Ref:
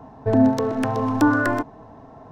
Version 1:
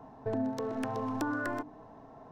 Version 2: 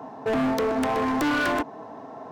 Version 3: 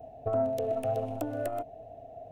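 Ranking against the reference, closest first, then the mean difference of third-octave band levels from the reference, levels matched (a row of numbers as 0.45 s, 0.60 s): 1, 3, 2; 3.0 dB, 4.5 dB, 7.0 dB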